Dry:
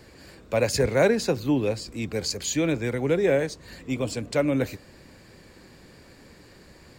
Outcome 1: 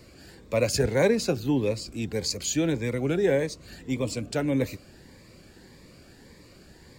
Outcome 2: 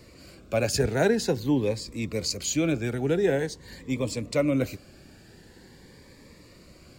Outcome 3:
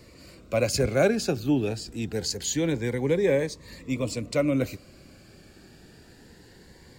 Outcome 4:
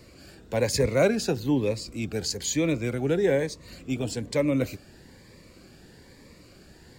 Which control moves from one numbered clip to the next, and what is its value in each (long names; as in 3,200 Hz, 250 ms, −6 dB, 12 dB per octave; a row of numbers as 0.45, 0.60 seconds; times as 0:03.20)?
phaser whose notches keep moving one way, speed: 1.7, 0.46, 0.24, 1.1 Hertz